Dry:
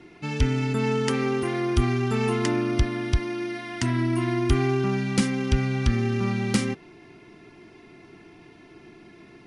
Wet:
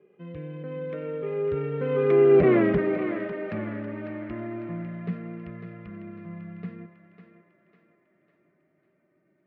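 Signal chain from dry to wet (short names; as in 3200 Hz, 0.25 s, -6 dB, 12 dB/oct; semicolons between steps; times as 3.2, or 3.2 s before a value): Doppler pass-by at 2.55, 49 m/s, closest 6.6 m; in parallel at -5.5 dB: sine folder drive 11 dB, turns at -12.5 dBFS; on the sum: speaker cabinet 170–2100 Hz, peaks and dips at 170 Hz +10 dB, 280 Hz -8 dB, 400 Hz +8 dB, 590 Hz +8 dB, 890 Hz -10 dB, 1600 Hz -5 dB; thinning echo 0.55 s, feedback 49%, high-pass 390 Hz, level -8.5 dB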